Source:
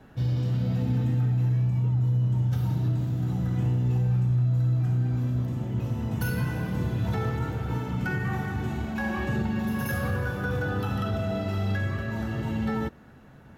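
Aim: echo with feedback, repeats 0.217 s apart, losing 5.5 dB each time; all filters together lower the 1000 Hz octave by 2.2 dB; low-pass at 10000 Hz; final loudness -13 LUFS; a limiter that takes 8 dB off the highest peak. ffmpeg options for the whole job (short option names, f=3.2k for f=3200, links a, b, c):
-af "lowpass=10k,equalizer=f=1k:t=o:g=-3,alimiter=level_in=1.5dB:limit=-24dB:level=0:latency=1,volume=-1.5dB,aecho=1:1:217|434|651|868|1085|1302|1519:0.531|0.281|0.149|0.079|0.0419|0.0222|0.0118,volume=18.5dB"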